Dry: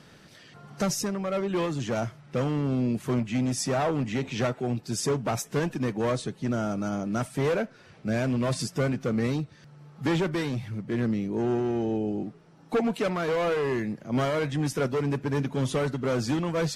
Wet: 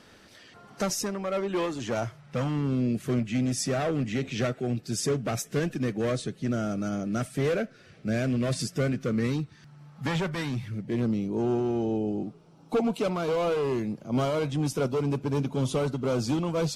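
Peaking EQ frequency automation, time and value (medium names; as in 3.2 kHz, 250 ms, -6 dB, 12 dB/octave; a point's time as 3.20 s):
peaking EQ -13 dB 0.42 oct
1.90 s 150 Hz
2.87 s 930 Hz
8.90 s 930 Hz
10.29 s 300 Hz
11.03 s 1.8 kHz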